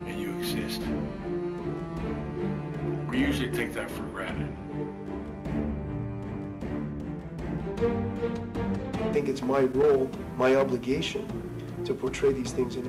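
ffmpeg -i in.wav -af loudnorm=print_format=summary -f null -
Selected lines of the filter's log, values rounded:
Input Integrated:    -29.7 LUFS
Input True Peak:     -17.1 dBTP
Input LRA:             6.3 LU
Input Threshold:     -39.7 LUFS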